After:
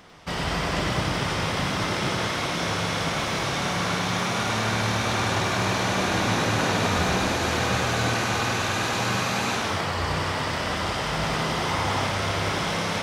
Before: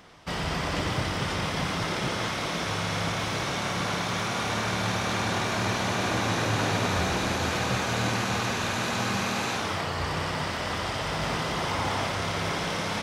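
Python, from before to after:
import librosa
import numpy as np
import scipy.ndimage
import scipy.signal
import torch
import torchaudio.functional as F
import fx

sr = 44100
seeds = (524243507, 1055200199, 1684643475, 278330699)

y = x + 10.0 ** (-5.0 / 20.0) * np.pad(x, (int(100 * sr / 1000.0), 0))[:len(x)]
y = F.gain(torch.from_numpy(y), 2.0).numpy()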